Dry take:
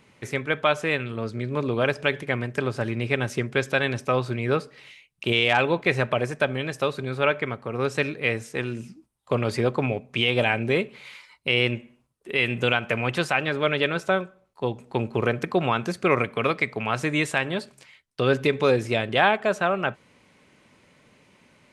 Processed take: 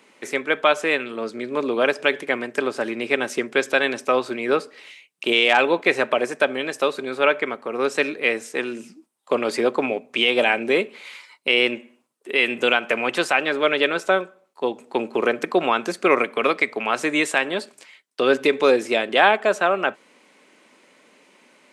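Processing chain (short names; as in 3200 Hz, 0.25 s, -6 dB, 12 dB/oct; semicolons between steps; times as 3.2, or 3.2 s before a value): HPF 250 Hz 24 dB/oct; bell 7800 Hz +3 dB 0.37 oct; gain +4 dB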